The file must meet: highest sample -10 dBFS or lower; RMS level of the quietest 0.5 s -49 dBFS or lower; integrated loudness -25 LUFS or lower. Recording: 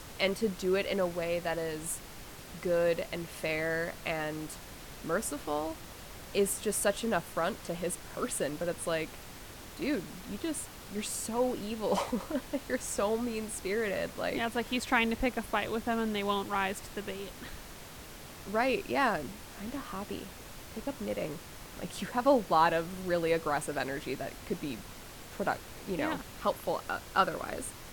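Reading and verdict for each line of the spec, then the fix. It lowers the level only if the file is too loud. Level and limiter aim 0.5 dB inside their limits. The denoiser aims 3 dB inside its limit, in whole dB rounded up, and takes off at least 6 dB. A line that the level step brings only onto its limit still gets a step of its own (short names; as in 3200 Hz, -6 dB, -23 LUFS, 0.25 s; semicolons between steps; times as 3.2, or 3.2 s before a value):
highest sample -11.0 dBFS: OK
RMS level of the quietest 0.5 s -47 dBFS: fail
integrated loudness -33.0 LUFS: OK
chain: denoiser 6 dB, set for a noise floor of -47 dBFS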